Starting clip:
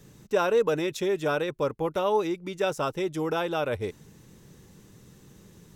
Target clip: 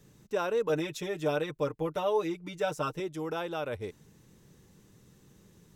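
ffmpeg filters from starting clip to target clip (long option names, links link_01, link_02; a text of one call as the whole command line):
ffmpeg -i in.wav -filter_complex "[0:a]asettb=1/sr,asplit=3[link_01][link_02][link_03];[link_01]atrim=end=0.694[link_04];[link_02]atrim=start=0.69:end=3,asetpts=PTS-STARTPTS,afade=type=in:duration=0.004:curve=qsin,afade=type=out:start_time=2.306:duration=0.004:curve=qsin,aecho=1:1:6.6:0.86,atrim=end_sample=101871[link_05];[link_03]atrim=start=2.996[link_06];[link_04][link_05]acrossfade=duration=0.004:curve1=hsin:curve2=qsin[link_07];[link_07][link_06]acrossfade=duration=0.004:curve1=qsin:curve2=hsin,volume=-6.5dB" out.wav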